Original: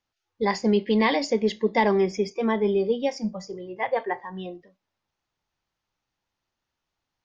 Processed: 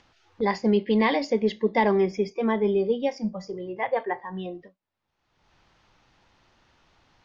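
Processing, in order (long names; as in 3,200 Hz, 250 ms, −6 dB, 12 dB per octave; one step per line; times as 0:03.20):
noise gate with hold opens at −43 dBFS
upward compression, threshold −28 dBFS
high-frequency loss of the air 120 metres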